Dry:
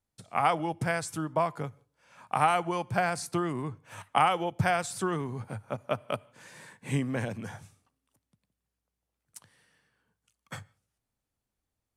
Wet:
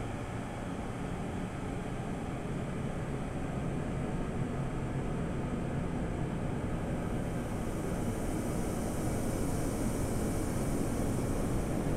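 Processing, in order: wind noise 290 Hz -36 dBFS; diffused feedback echo 1.115 s, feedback 53%, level -8.5 dB; Paulstretch 16×, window 0.50 s, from 8.75; gain +3.5 dB

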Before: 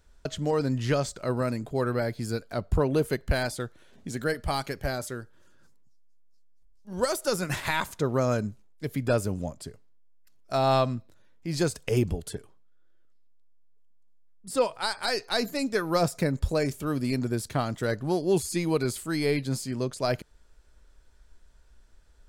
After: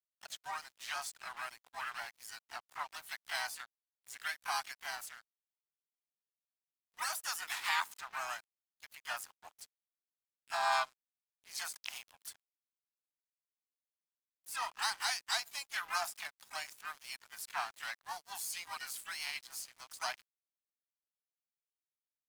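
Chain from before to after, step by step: steep high-pass 730 Hz 72 dB/oct; harmoniser +4 st -3 dB, +12 st -8 dB; crossover distortion -45.5 dBFS; gain -6 dB

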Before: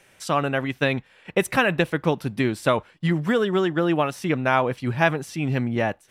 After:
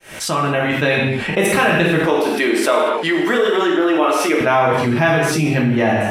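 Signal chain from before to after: opening faded in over 1.07 s; 2.05–4.41 HPF 310 Hz 24 dB/oct; non-linear reverb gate 0.26 s falling, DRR -3.5 dB; fast leveller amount 70%; gain -2 dB

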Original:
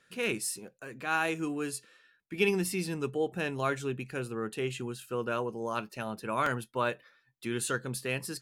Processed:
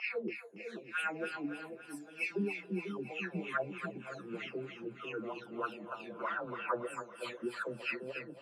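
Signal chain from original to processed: spectral delay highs early, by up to 0.741 s; LFO band-pass sine 3.2 Hz 210–2900 Hz; split-band echo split 600 Hz, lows 0.493 s, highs 0.281 s, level -7.5 dB; gain +2.5 dB

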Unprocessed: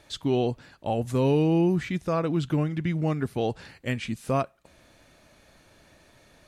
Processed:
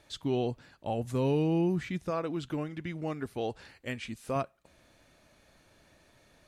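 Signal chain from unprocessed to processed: 2.1–4.36 bell 150 Hz -7.5 dB 1.1 oct; gain -5.5 dB

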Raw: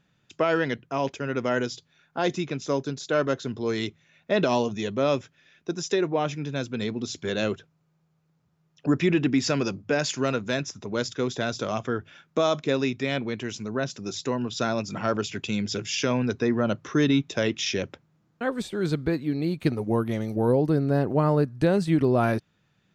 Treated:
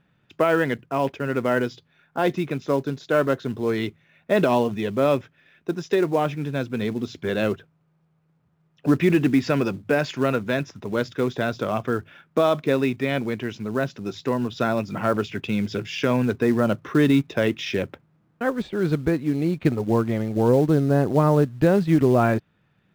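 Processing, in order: LPF 2700 Hz 12 dB/oct; in parallel at -5.5 dB: short-mantissa float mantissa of 2-bit

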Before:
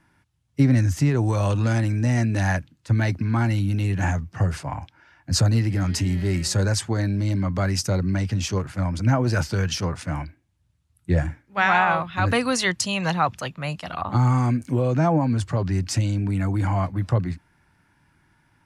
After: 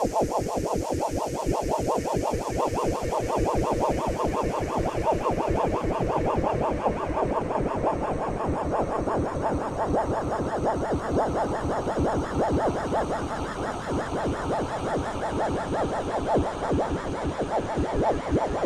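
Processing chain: bin magnitudes rounded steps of 15 dB; Paulstretch 27×, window 0.50 s, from 0.92; ring modulator with a swept carrier 480 Hz, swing 65%, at 5.7 Hz; gain -2.5 dB

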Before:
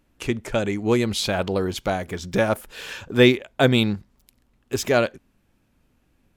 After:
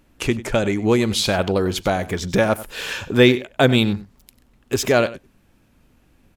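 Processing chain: in parallel at +2.5 dB: compressor, threshold -28 dBFS, peak gain reduction 17 dB; on the sum: echo 96 ms -17 dB

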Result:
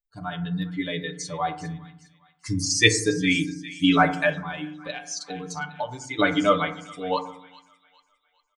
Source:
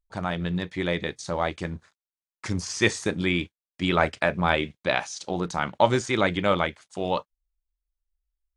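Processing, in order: per-bin expansion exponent 2; thin delay 0.406 s, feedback 38%, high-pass 1600 Hz, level -15.5 dB; 4.35–6.19 compressor 6:1, threshold -37 dBFS, peak gain reduction 20.5 dB; high shelf 3600 Hz +8 dB; comb 6.8 ms, depth 95%; FDN reverb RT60 0.72 s, low-frequency decay 1.45×, high-frequency decay 0.3×, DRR 6.5 dB; gain +2.5 dB

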